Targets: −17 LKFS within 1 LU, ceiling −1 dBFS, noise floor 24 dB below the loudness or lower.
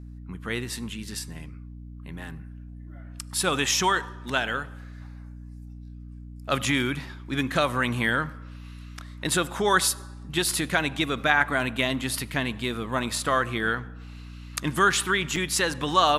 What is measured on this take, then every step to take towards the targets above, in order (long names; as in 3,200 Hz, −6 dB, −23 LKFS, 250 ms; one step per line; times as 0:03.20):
number of dropouts 1; longest dropout 4.5 ms; mains hum 60 Hz; hum harmonics up to 300 Hz; level of the hum −39 dBFS; integrated loudness −25.5 LKFS; sample peak −5.0 dBFS; target loudness −17.0 LKFS
→ repair the gap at 0:15.36, 4.5 ms
mains-hum notches 60/120/180/240/300 Hz
level +8.5 dB
brickwall limiter −1 dBFS